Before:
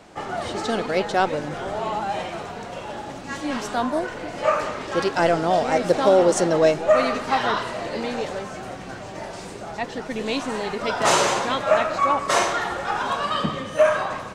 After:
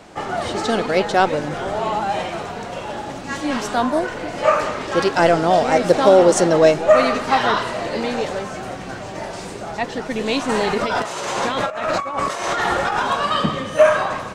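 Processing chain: 10.49–13 negative-ratio compressor -27 dBFS, ratio -1; gain +4.5 dB

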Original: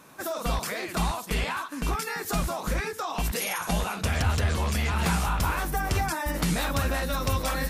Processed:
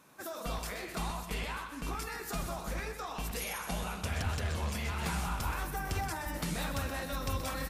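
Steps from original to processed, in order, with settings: de-hum 58.98 Hz, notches 34; on a send: feedback echo 0.126 s, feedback 48%, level -10 dB; on the sum: gain -8.5 dB

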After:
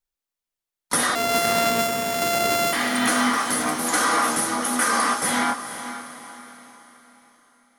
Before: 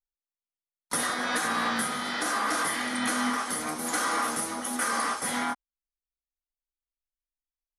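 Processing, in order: 1.15–2.73 sample sorter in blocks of 64 samples; diffused feedback echo 0.469 s, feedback 42%, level -11 dB; gain +7 dB

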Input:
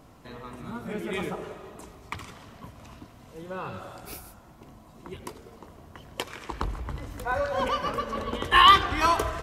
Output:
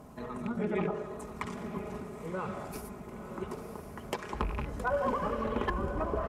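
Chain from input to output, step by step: rattling part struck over -32 dBFS, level -24 dBFS; treble ducked by the level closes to 300 Hz, closed at -19 dBFS; HPF 46 Hz 12 dB/oct; bell 3500 Hz -10 dB 1.9 oct; comb 4.8 ms, depth 45%; in parallel at -2 dB: compressor, threshold -40 dBFS, peak gain reduction 14.5 dB; on the sum: tempo 1.5×; hard clip -20 dBFS, distortion -26 dB; on a send: diffused feedback echo 1.008 s, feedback 50%, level -8.5 dB; on the sum: gain -1.5 dB

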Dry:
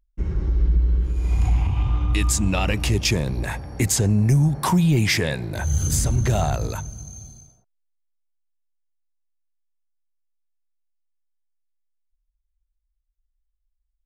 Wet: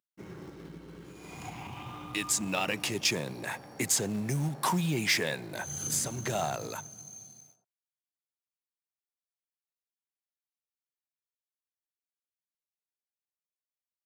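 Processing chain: HPF 130 Hz 24 dB/oct; low shelf 250 Hz -10.5 dB; in parallel at -5.5 dB: companded quantiser 4-bit; on the sum: gain -8.5 dB

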